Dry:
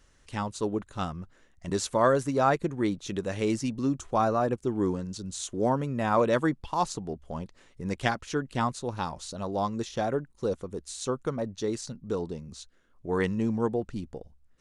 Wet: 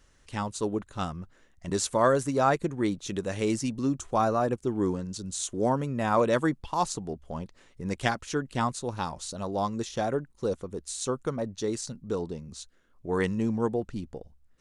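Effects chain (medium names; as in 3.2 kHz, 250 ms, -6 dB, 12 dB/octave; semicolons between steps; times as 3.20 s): dynamic bell 8.8 kHz, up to +5 dB, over -55 dBFS, Q 0.99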